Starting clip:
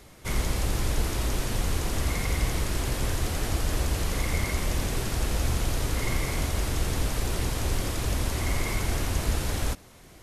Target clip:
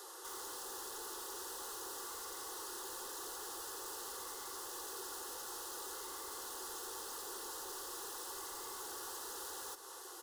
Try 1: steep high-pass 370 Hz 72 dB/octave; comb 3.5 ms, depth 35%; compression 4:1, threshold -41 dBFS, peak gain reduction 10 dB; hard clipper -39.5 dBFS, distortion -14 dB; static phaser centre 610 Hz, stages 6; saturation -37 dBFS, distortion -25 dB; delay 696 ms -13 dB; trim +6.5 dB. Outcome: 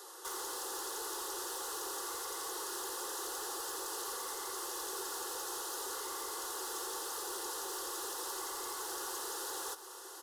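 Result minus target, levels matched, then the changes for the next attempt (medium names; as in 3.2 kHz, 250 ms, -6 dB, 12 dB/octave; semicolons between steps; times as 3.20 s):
echo 344 ms early; hard clipper: distortion -8 dB
change: hard clipper -48.5 dBFS, distortion -6 dB; change: delay 1040 ms -13 dB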